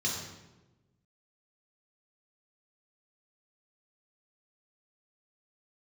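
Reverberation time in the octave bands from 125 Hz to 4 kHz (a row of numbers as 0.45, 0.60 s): 1.6, 1.4, 1.2, 1.0, 0.85, 0.75 s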